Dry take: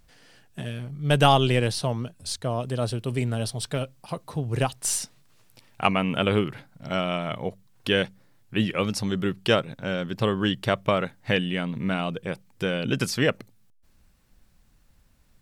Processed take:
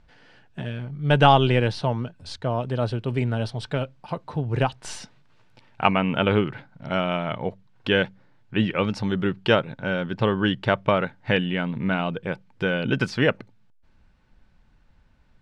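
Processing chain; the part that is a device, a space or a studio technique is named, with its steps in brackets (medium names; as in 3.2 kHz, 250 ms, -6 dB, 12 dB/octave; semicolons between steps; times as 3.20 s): inside a cardboard box (low-pass 3.3 kHz 12 dB/octave; small resonant body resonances 890/1500 Hz, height 7 dB); trim +2 dB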